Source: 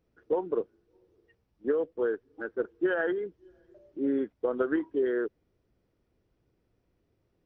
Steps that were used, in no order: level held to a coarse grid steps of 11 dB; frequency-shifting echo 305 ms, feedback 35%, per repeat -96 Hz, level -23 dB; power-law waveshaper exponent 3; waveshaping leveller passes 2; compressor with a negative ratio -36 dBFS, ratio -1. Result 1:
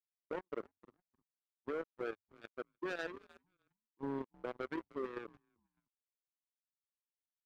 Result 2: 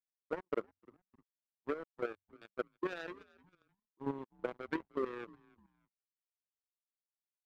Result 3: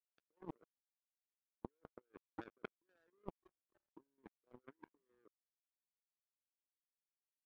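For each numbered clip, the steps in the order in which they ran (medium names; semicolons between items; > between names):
power-law waveshaper > compressor with a negative ratio > frequency-shifting echo > level held to a coarse grid > waveshaping leveller; power-law waveshaper > compressor with a negative ratio > waveshaping leveller > frequency-shifting echo > level held to a coarse grid; waveshaping leveller > compressor with a negative ratio > frequency-shifting echo > power-law waveshaper > level held to a coarse grid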